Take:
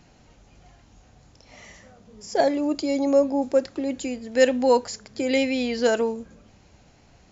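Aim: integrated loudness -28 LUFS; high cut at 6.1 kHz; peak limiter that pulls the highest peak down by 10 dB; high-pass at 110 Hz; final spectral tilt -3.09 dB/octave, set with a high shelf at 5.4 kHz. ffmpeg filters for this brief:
-af "highpass=110,lowpass=6100,highshelf=f=5400:g=-8.5,volume=0.794,alimiter=limit=0.126:level=0:latency=1"

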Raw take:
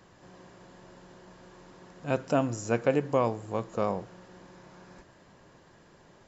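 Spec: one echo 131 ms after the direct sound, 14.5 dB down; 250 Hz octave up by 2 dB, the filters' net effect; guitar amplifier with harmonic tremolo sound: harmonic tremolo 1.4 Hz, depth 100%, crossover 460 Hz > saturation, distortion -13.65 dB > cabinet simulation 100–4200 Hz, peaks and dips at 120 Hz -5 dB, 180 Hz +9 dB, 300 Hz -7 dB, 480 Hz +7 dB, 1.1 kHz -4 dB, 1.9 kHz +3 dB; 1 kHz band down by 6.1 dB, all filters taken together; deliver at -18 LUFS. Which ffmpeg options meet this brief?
-filter_complex "[0:a]equalizer=f=250:t=o:g=4,equalizer=f=1000:t=o:g=-8,aecho=1:1:131:0.188,acrossover=split=460[s0][s1];[s0]aeval=exprs='val(0)*(1-1/2+1/2*cos(2*PI*1.4*n/s))':c=same[s2];[s1]aeval=exprs='val(0)*(1-1/2-1/2*cos(2*PI*1.4*n/s))':c=same[s3];[s2][s3]amix=inputs=2:normalize=0,asoftclip=threshold=0.0596,highpass=100,equalizer=f=120:t=q:w=4:g=-5,equalizer=f=180:t=q:w=4:g=9,equalizer=f=300:t=q:w=4:g=-7,equalizer=f=480:t=q:w=4:g=7,equalizer=f=1100:t=q:w=4:g=-4,equalizer=f=1900:t=q:w=4:g=3,lowpass=f=4200:w=0.5412,lowpass=f=4200:w=1.3066,volume=7.5"

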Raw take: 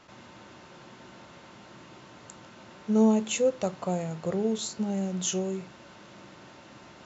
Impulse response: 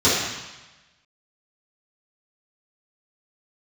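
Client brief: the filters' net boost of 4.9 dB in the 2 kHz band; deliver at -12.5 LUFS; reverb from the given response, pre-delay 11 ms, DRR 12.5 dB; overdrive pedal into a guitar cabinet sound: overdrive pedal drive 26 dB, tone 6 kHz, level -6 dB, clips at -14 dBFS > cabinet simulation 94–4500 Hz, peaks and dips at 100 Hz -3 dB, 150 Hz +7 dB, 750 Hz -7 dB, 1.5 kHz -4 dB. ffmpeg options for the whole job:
-filter_complex "[0:a]equalizer=f=2000:t=o:g=8,asplit=2[s0][s1];[1:a]atrim=start_sample=2205,adelay=11[s2];[s1][s2]afir=irnorm=-1:irlink=0,volume=0.0211[s3];[s0][s3]amix=inputs=2:normalize=0,asplit=2[s4][s5];[s5]highpass=f=720:p=1,volume=20,asoftclip=type=tanh:threshold=0.2[s6];[s4][s6]amix=inputs=2:normalize=0,lowpass=f=6000:p=1,volume=0.501,highpass=94,equalizer=f=100:t=q:w=4:g=-3,equalizer=f=150:t=q:w=4:g=7,equalizer=f=750:t=q:w=4:g=-7,equalizer=f=1500:t=q:w=4:g=-4,lowpass=f=4500:w=0.5412,lowpass=f=4500:w=1.3066,volume=4.47"

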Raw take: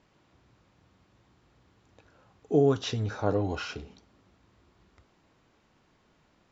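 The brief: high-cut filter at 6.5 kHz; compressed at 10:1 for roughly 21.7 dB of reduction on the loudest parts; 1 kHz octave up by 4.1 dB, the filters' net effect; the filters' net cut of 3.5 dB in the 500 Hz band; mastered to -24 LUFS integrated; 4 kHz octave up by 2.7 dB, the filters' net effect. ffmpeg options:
-af "lowpass=6500,equalizer=f=500:t=o:g=-6,equalizer=f=1000:t=o:g=8.5,equalizer=f=4000:t=o:g=3.5,acompressor=threshold=0.00794:ratio=10,volume=16.8"

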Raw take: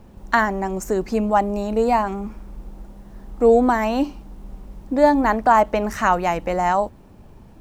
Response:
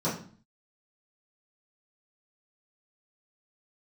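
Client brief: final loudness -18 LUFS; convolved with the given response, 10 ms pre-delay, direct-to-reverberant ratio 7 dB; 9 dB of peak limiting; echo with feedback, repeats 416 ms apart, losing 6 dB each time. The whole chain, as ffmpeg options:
-filter_complex "[0:a]alimiter=limit=0.237:level=0:latency=1,aecho=1:1:416|832|1248|1664|2080|2496:0.501|0.251|0.125|0.0626|0.0313|0.0157,asplit=2[s0][s1];[1:a]atrim=start_sample=2205,adelay=10[s2];[s1][s2]afir=irnorm=-1:irlink=0,volume=0.141[s3];[s0][s3]amix=inputs=2:normalize=0,volume=1.33"

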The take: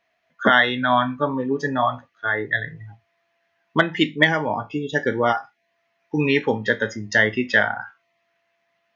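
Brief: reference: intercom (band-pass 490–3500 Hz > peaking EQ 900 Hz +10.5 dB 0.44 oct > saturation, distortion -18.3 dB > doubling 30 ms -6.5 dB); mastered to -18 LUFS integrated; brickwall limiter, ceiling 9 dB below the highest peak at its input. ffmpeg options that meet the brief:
-filter_complex "[0:a]alimiter=limit=0.251:level=0:latency=1,highpass=490,lowpass=3500,equalizer=f=900:t=o:w=0.44:g=10.5,asoftclip=threshold=0.266,asplit=2[s0][s1];[s1]adelay=30,volume=0.473[s2];[s0][s2]amix=inputs=2:normalize=0,volume=2.11"

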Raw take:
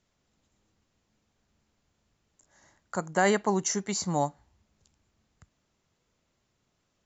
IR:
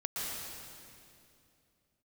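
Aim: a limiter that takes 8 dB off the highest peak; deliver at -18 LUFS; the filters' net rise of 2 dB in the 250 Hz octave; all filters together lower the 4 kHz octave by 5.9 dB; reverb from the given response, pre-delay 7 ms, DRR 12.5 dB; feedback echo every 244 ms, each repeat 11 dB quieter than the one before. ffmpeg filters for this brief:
-filter_complex "[0:a]equalizer=f=250:t=o:g=3,equalizer=f=4000:t=o:g=-8.5,alimiter=limit=0.119:level=0:latency=1,aecho=1:1:244|488|732:0.282|0.0789|0.0221,asplit=2[s0][s1];[1:a]atrim=start_sample=2205,adelay=7[s2];[s1][s2]afir=irnorm=-1:irlink=0,volume=0.141[s3];[s0][s3]amix=inputs=2:normalize=0,volume=4.47"

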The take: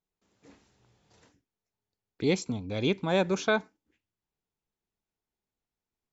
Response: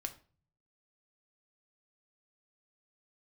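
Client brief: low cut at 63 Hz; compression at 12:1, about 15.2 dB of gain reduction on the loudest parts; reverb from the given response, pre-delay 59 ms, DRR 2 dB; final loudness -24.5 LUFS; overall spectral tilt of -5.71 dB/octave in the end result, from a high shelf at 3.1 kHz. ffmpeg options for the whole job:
-filter_complex "[0:a]highpass=63,highshelf=f=3100:g=-8,acompressor=threshold=0.0158:ratio=12,asplit=2[s0][s1];[1:a]atrim=start_sample=2205,adelay=59[s2];[s1][s2]afir=irnorm=-1:irlink=0,volume=0.944[s3];[s0][s3]amix=inputs=2:normalize=0,volume=5.96"

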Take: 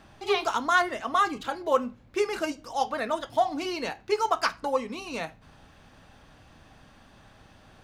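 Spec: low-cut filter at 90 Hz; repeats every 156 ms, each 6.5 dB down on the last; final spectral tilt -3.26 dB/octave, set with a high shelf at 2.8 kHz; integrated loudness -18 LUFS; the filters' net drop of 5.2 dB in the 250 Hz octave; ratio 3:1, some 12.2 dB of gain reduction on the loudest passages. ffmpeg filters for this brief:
-af "highpass=90,equalizer=f=250:t=o:g=-7,highshelf=f=2800:g=-4,acompressor=threshold=0.0158:ratio=3,aecho=1:1:156|312|468|624|780|936:0.473|0.222|0.105|0.0491|0.0231|0.0109,volume=9.44"

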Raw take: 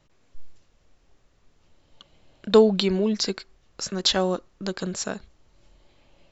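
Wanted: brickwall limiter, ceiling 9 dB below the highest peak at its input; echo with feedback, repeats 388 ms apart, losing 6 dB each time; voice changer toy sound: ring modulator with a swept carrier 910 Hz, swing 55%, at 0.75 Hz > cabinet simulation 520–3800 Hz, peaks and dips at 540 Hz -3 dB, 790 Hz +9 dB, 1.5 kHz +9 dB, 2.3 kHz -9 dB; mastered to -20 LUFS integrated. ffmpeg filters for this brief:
-af "alimiter=limit=0.2:level=0:latency=1,aecho=1:1:388|776|1164|1552|1940|2328:0.501|0.251|0.125|0.0626|0.0313|0.0157,aeval=exprs='val(0)*sin(2*PI*910*n/s+910*0.55/0.75*sin(2*PI*0.75*n/s))':c=same,highpass=520,equalizer=f=540:t=q:w=4:g=-3,equalizer=f=790:t=q:w=4:g=9,equalizer=f=1500:t=q:w=4:g=9,equalizer=f=2300:t=q:w=4:g=-9,lowpass=f=3800:w=0.5412,lowpass=f=3800:w=1.3066,volume=2"

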